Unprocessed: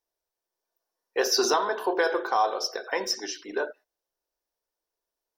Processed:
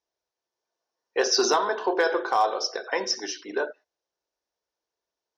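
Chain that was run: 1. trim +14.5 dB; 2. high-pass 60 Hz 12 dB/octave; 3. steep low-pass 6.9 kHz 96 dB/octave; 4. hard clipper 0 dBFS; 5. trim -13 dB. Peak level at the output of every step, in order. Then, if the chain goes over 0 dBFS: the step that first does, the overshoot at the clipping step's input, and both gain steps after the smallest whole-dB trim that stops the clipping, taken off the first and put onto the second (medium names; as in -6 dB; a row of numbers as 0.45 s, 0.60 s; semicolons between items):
+2.5 dBFS, +3.0 dBFS, +3.0 dBFS, 0.0 dBFS, -13.0 dBFS; step 1, 3.0 dB; step 1 +11.5 dB, step 5 -10 dB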